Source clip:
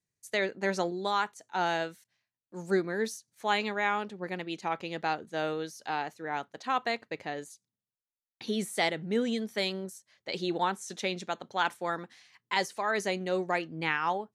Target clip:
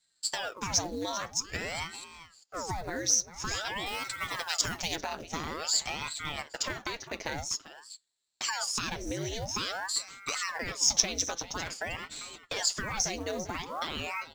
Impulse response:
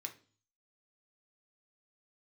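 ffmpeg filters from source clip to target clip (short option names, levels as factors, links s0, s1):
-filter_complex "[0:a]alimiter=level_in=1.12:limit=0.0631:level=0:latency=1:release=26,volume=0.891,aecho=1:1:7.4:0.52,asplit=2[s0][s1];[1:a]atrim=start_sample=2205,atrim=end_sample=3087[s2];[s1][s2]afir=irnorm=-1:irlink=0,volume=0.398[s3];[s0][s3]amix=inputs=2:normalize=0,acompressor=threshold=0.0178:ratio=16,lowpass=f=5900:t=q:w=11,asplit=2[s4][s5];[s5]aecho=0:1:396:0.2[s6];[s4][s6]amix=inputs=2:normalize=0,acrusher=bits=6:mode=log:mix=0:aa=0.000001,asettb=1/sr,asplit=3[s7][s8][s9];[s7]atrim=end=3.864[s10];[s8]atrim=start=3.86:end=4.96,asetpts=PTS-STARTPTS,afade=t=in:d=0.004:c=qsin,afade=t=out:st=1.096:d=0.004:c=qsin,bass=f=250:g=2,treble=f=4000:g=11[s11];[s9]atrim=start=4.956[s12];[s10][s11]acrossfade=d=0.004:c1=hsin:c2=qsin[s13];[s13][s12]acrossfade=d=0.004:c1=qsin:c2=hsin,aeval=exprs='val(0)*sin(2*PI*930*n/s+930*0.9/0.49*sin(2*PI*0.49*n/s))':c=same,volume=2"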